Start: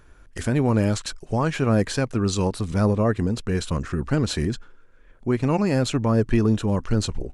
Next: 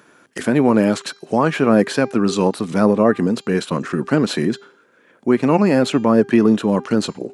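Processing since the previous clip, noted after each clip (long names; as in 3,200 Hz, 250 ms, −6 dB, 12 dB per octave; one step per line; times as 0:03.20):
dynamic equaliser 6,700 Hz, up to −8 dB, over −47 dBFS, Q 0.74
high-pass filter 180 Hz 24 dB per octave
hum removal 399.5 Hz, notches 18
level +8 dB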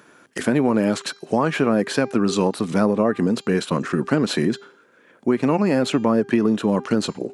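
downward compressor, threshold −14 dBFS, peak gain reduction 6.5 dB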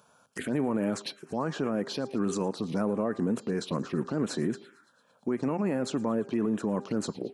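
brickwall limiter −13.5 dBFS, peak gain reduction 9 dB
feedback echo with a high-pass in the loop 113 ms, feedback 66%, high-pass 360 Hz, level −20 dB
phaser swept by the level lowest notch 310 Hz, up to 4,900 Hz, full sweep at −18 dBFS
level −6 dB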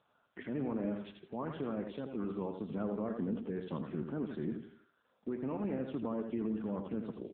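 on a send: repeating echo 83 ms, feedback 37%, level −6.5 dB
on the sum: level −8 dB
AMR narrowband 6.7 kbit/s 8,000 Hz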